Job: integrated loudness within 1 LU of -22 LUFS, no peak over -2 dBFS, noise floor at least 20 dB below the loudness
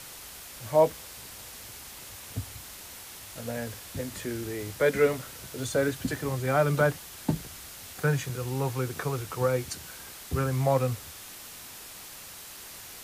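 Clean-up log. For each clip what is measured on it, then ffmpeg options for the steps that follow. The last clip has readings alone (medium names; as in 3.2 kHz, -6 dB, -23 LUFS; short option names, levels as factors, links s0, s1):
noise floor -45 dBFS; noise floor target -49 dBFS; loudness -29.0 LUFS; peak level -11.0 dBFS; loudness target -22.0 LUFS
-> -af "afftdn=nr=6:nf=-45"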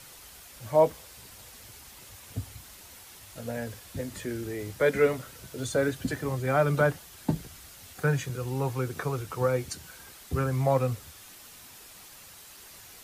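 noise floor -50 dBFS; loudness -29.5 LUFS; peak level -11.5 dBFS; loudness target -22.0 LUFS
-> -af "volume=2.37"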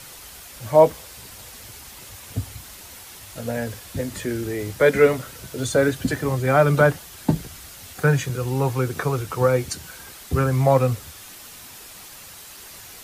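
loudness -22.0 LUFS; peak level -4.0 dBFS; noise floor -42 dBFS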